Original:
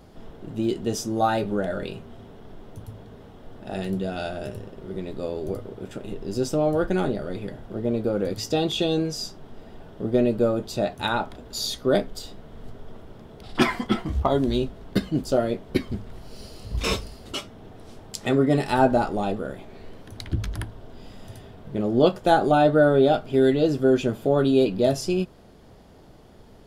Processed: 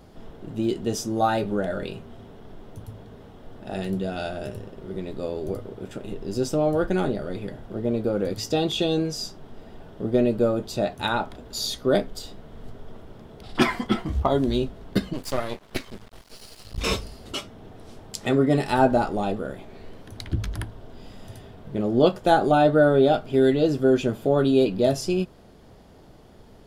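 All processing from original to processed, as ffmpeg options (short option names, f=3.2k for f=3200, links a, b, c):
-filter_complex "[0:a]asettb=1/sr,asplit=3[a][b][c];[a]atrim=end=15.134[d];[b]atrim=start=15.13:end=16.78,asetpts=PTS-STARTPTS,afade=t=in:d=0.004:c=qsin,afade=t=out:st=1.646:d=0.004:c=qsin,tiltshelf=f=700:g=-6,aeval=exprs='max(val(0),0)':c=same[e];[c]atrim=start=16.776[f];[d][e]acrossfade=d=0.004:c1=hsin:c2=qsin[g];[g][f]acrossfade=d=0.004:c1=qsin:c2=hsin"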